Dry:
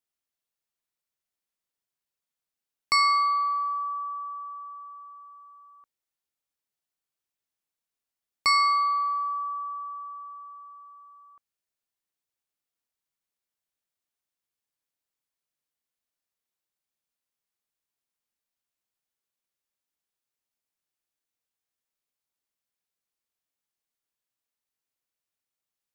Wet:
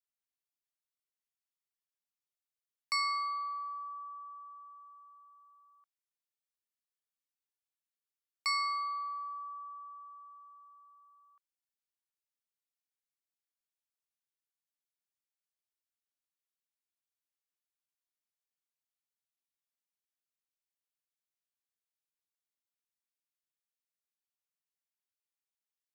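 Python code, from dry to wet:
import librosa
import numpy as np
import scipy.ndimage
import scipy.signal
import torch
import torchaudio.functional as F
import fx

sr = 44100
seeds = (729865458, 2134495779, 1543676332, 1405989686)

y = scipy.signal.sosfilt(scipy.signal.bessel(2, 1200.0, 'highpass', norm='mag', fs=sr, output='sos'), x)
y = y * 10.0 ** (-8.5 / 20.0)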